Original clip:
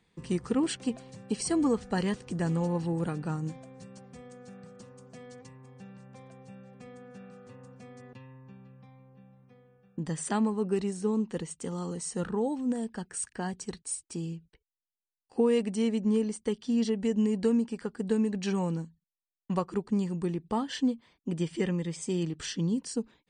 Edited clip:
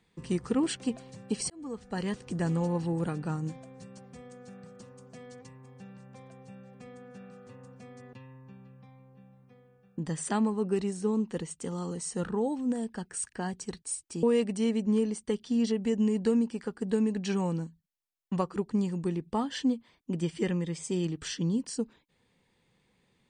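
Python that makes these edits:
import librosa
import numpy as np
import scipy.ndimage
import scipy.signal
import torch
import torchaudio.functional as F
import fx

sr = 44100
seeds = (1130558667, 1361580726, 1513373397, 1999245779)

y = fx.edit(x, sr, fx.fade_in_span(start_s=1.5, length_s=0.8),
    fx.cut(start_s=14.23, length_s=1.18), tone=tone)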